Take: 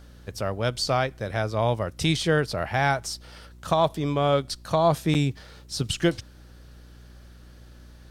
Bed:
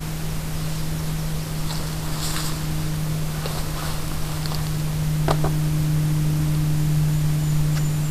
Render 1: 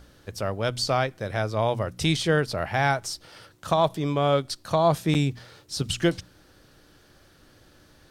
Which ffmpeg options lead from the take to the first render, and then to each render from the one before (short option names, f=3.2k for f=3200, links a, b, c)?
-af "bandreject=f=60:t=h:w=4,bandreject=f=120:t=h:w=4,bandreject=f=180:t=h:w=4,bandreject=f=240:t=h:w=4"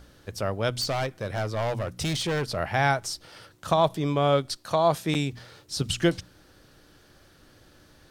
-filter_complex "[0:a]asettb=1/sr,asplit=3[a][b][c];[a]atrim=end=0.804[d];[b]atrim=start=0.8:end=2.57,asetpts=PTS-STARTPTS,afade=t=in:d=0.004:c=qsin,afade=t=out:st=1.766:d=0.004:c=qsin,asoftclip=type=hard:threshold=-24dB[e];[c]atrim=start=2.566[f];[d][e]acrossfade=d=0.004:c1=hsin:c2=qsin[g];[g][f]acrossfade=d=0.004:c1=qsin:c2=hsin,asettb=1/sr,asplit=3[h][i][j];[h]atrim=end=4.574[k];[i]atrim=start=4.57:end=5.33,asetpts=PTS-STARTPTS,afade=t=in:d=0.004:c=qsin,afade=t=out:st=0.756:d=0.004:c=qsin,lowshelf=f=220:g=-8[l];[j]atrim=start=5.326[m];[k][l]acrossfade=d=0.004:c1=hsin:c2=qsin[n];[n][m]acrossfade=d=0.004:c1=qsin:c2=hsin"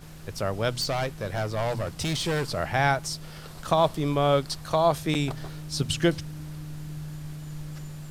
-filter_complex "[1:a]volume=-17dB[a];[0:a][a]amix=inputs=2:normalize=0"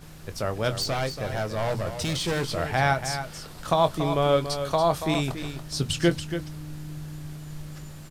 -filter_complex "[0:a]asplit=2[a][b];[b]adelay=23,volume=-11.5dB[c];[a][c]amix=inputs=2:normalize=0,aecho=1:1:283:0.335"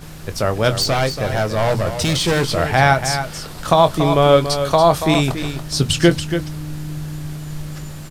-af "volume=9.5dB,alimiter=limit=-1dB:level=0:latency=1"